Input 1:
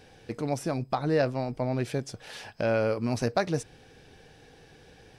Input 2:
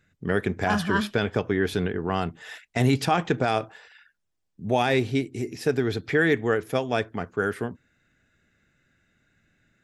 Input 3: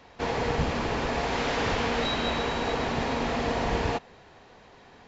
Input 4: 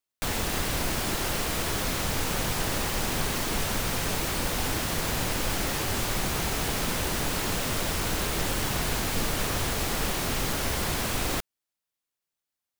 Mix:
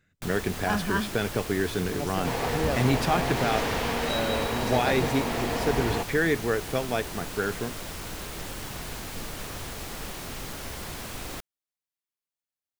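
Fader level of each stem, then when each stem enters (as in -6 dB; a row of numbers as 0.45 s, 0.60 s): -5.0 dB, -3.0 dB, -1.5 dB, -8.5 dB; 1.50 s, 0.00 s, 2.05 s, 0.00 s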